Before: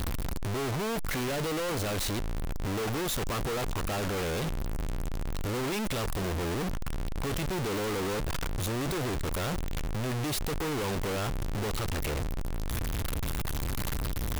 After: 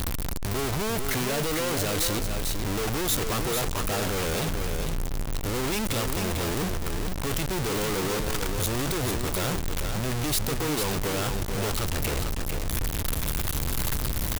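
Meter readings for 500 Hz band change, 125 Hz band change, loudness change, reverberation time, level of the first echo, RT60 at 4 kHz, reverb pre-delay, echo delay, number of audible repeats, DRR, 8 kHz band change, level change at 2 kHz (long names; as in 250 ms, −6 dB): +3.0 dB, +3.0 dB, +4.5 dB, no reverb audible, −5.5 dB, no reverb audible, no reverb audible, 447 ms, 1, no reverb audible, +8.0 dB, +4.0 dB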